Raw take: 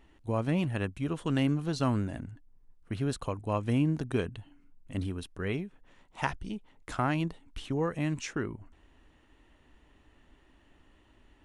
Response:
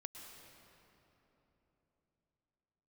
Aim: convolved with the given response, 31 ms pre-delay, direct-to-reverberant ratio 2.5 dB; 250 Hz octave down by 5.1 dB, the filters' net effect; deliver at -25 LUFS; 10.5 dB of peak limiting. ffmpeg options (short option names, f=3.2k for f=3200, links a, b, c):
-filter_complex "[0:a]equalizer=f=250:t=o:g=-7,alimiter=level_in=0.5dB:limit=-24dB:level=0:latency=1,volume=-0.5dB,asplit=2[a][b];[1:a]atrim=start_sample=2205,adelay=31[c];[b][c]afir=irnorm=-1:irlink=0,volume=1.5dB[d];[a][d]amix=inputs=2:normalize=0,volume=11dB"